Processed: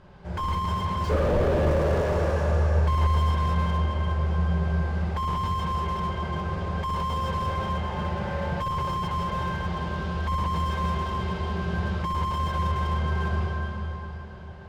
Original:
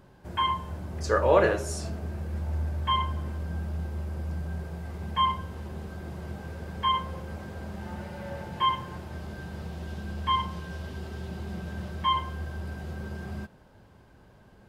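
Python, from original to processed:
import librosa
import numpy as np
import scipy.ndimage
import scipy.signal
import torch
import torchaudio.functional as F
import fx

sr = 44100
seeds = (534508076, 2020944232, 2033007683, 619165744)

y = scipy.signal.sosfilt(scipy.signal.butter(2, 4600.0, 'lowpass', fs=sr, output='sos'), x)
y = fx.peak_eq(y, sr, hz=280.0, db=-10.0, octaves=0.5)
y = fx.rev_plate(y, sr, seeds[0], rt60_s=3.9, hf_ratio=0.85, predelay_ms=0, drr_db=-4.5)
y = fx.slew_limit(y, sr, full_power_hz=27.0)
y = y * librosa.db_to_amplitude(3.5)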